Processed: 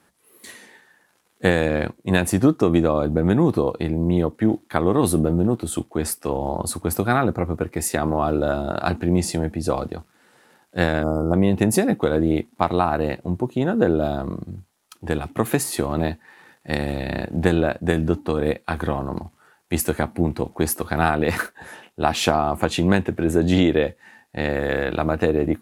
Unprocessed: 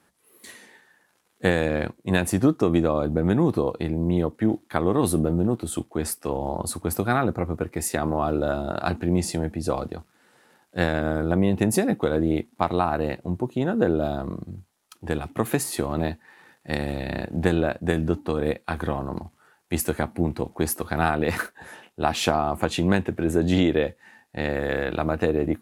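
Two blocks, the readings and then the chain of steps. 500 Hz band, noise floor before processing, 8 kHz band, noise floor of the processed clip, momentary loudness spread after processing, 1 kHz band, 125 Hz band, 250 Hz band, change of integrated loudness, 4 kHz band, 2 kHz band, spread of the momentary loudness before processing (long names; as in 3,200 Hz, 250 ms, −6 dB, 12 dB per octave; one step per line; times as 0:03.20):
+3.0 dB, −66 dBFS, +3.0 dB, −63 dBFS, 9 LU, +3.0 dB, +3.0 dB, +3.0 dB, +3.0 dB, +3.0 dB, +3.0 dB, 9 LU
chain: gain on a spectral selection 0:11.04–0:11.34, 1,400–4,800 Hz −26 dB
level +3 dB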